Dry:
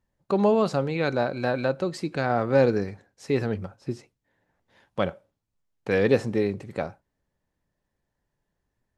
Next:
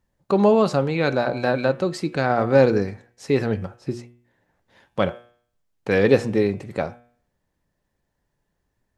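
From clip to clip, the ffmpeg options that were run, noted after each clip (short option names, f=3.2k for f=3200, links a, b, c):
-af "bandreject=f=120.1:t=h:w=4,bandreject=f=240.2:t=h:w=4,bandreject=f=360.3:t=h:w=4,bandreject=f=480.4:t=h:w=4,bandreject=f=600.5:t=h:w=4,bandreject=f=720.6:t=h:w=4,bandreject=f=840.7:t=h:w=4,bandreject=f=960.8:t=h:w=4,bandreject=f=1.0809k:t=h:w=4,bandreject=f=1.201k:t=h:w=4,bandreject=f=1.3211k:t=h:w=4,bandreject=f=1.4412k:t=h:w=4,bandreject=f=1.5613k:t=h:w=4,bandreject=f=1.6814k:t=h:w=4,bandreject=f=1.8015k:t=h:w=4,bandreject=f=1.9216k:t=h:w=4,bandreject=f=2.0417k:t=h:w=4,bandreject=f=2.1618k:t=h:w=4,bandreject=f=2.2819k:t=h:w=4,bandreject=f=2.402k:t=h:w=4,bandreject=f=2.5221k:t=h:w=4,bandreject=f=2.6422k:t=h:w=4,bandreject=f=2.7623k:t=h:w=4,bandreject=f=2.8824k:t=h:w=4,bandreject=f=3.0025k:t=h:w=4,bandreject=f=3.1226k:t=h:w=4,bandreject=f=3.2427k:t=h:w=4,bandreject=f=3.3628k:t=h:w=4,bandreject=f=3.4829k:t=h:w=4,bandreject=f=3.603k:t=h:w=4,volume=4.5dB"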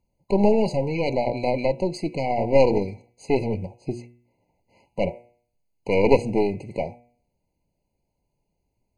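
-af "aeval=exprs='0.794*(cos(1*acos(clip(val(0)/0.794,-1,1)))-cos(1*PI/2))+0.2*(cos(4*acos(clip(val(0)/0.794,-1,1)))-cos(4*PI/2))':c=same,afftfilt=real='re*eq(mod(floor(b*sr/1024/1000),2),0)':imag='im*eq(mod(floor(b*sr/1024/1000),2),0)':win_size=1024:overlap=0.75,volume=-1dB"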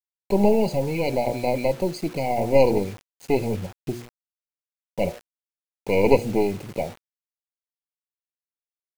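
-af "acrusher=bits=6:mix=0:aa=0.000001"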